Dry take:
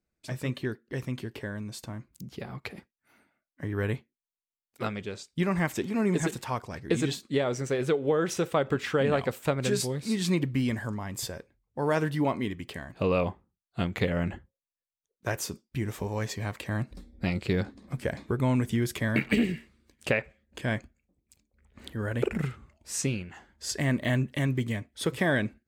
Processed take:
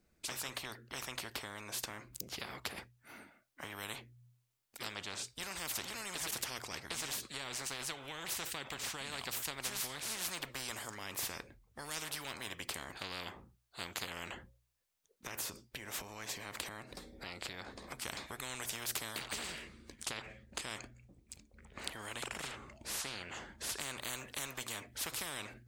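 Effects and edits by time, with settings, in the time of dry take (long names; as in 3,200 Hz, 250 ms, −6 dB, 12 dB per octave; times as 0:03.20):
0:14.31–0:18.02: downward compressor 4 to 1, threshold −41 dBFS
0:19.18–0:24.01: parametric band 14,000 Hz −13.5 dB 0.29 octaves
whole clip: hum removal 60.76 Hz, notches 2; every bin compressed towards the loudest bin 10 to 1; level −3.5 dB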